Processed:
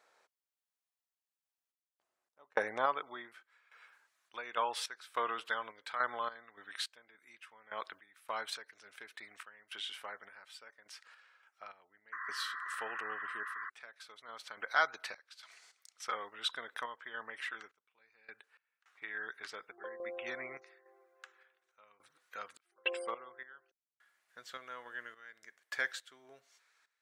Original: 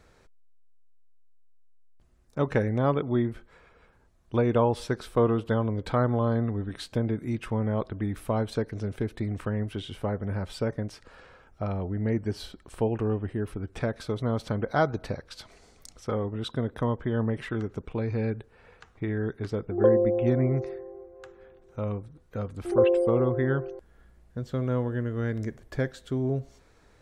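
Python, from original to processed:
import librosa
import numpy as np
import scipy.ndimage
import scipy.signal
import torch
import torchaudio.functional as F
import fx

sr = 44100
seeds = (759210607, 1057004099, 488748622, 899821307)

y = fx.filter_sweep_highpass(x, sr, from_hz=730.0, to_hz=1600.0, start_s=2.23, end_s=3.61, q=1.2)
y = fx.tremolo_random(y, sr, seeds[0], hz=3.5, depth_pct=100)
y = fx.spec_paint(y, sr, seeds[1], shape='noise', start_s=12.12, length_s=1.58, low_hz=1000.0, high_hz=2000.0, level_db=-46.0)
y = F.gain(torch.from_numpy(y), 3.5).numpy()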